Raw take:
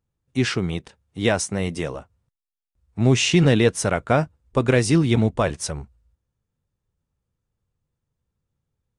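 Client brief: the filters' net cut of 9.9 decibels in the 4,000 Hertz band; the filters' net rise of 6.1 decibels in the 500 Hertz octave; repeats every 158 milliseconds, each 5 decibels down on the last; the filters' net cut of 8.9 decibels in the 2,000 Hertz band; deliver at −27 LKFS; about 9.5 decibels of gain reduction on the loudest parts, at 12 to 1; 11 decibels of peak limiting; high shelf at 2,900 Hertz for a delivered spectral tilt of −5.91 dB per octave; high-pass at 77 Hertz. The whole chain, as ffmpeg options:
ffmpeg -i in.wav -af "highpass=77,equalizer=frequency=500:width_type=o:gain=8,equalizer=frequency=2000:width_type=o:gain=-9,highshelf=frequency=2900:gain=-3.5,equalizer=frequency=4000:width_type=o:gain=-7.5,acompressor=threshold=-17dB:ratio=12,alimiter=limit=-18dB:level=0:latency=1,aecho=1:1:158|316|474|632|790|948|1106:0.562|0.315|0.176|0.0988|0.0553|0.031|0.0173,volume=1dB" out.wav

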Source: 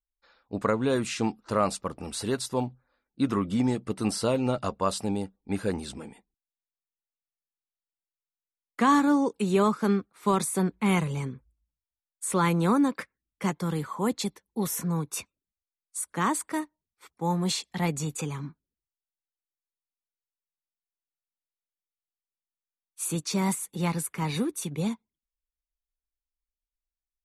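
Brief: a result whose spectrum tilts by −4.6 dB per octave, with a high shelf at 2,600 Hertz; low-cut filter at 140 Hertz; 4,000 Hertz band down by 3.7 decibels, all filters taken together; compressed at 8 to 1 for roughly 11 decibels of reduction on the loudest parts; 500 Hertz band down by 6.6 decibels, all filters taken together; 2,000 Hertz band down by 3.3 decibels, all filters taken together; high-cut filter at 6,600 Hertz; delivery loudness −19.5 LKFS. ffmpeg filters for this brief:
ffmpeg -i in.wav -af "highpass=140,lowpass=6600,equalizer=frequency=500:width_type=o:gain=-8.5,equalizer=frequency=2000:width_type=o:gain=-4,highshelf=frequency=2600:gain=4.5,equalizer=frequency=4000:width_type=o:gain=-6.5,acompressor=threshold=-32dB:ratio=8,volume=18dB" out.wav

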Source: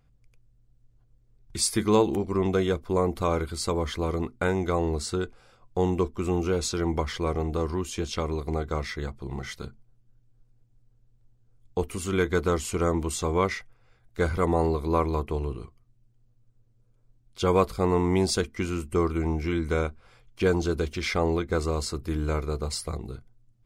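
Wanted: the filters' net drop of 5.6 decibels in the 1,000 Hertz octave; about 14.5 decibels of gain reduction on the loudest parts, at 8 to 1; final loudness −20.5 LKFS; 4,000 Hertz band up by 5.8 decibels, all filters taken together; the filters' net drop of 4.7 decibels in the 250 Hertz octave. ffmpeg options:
ffmpeg -i in.wav -af "equalizer=frequency=250:width_type=o:gain=-7,equalizer=frequency=1000:width_type=o:gain=-7,equalizer=frequency=4000:width_type=o:gain=7.5,acompressor=threshold=-34dB:ratio=8,volume=18dB" out.wav

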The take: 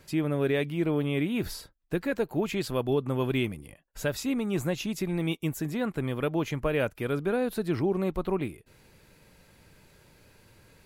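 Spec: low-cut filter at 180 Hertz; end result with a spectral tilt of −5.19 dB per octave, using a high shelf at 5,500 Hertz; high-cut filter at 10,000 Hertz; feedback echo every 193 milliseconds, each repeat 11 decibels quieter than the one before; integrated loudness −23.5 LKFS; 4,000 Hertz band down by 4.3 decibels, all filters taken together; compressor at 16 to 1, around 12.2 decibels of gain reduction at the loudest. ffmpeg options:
ffmpeg -i in.wav -af "highpass=180,lowpass=10000,equalizer=frequency=4000:width_type=o:gain=-8.5,highshelf=frequency=5500:gain=7,acompressor=threshold=-35dB:ratio=16,aecho=1:1:193|386|579:0.282|0.0789|0.0221,volume=16.5dB" out.wav

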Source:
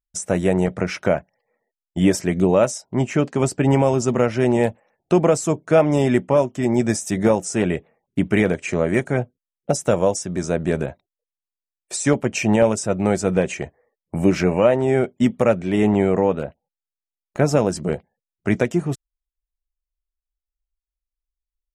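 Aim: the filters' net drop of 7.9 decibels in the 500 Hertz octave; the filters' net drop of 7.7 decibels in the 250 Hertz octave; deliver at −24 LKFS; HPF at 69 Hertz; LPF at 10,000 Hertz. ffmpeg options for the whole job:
ffmpeg -i in.wav -af "highpass=69,lowpass=10000,equalizer=frequency=250:width_type=o:gain=-8.5,equalizer=frequency=500:width_type=o:gain=-7.5,volume=2dB" out.wav

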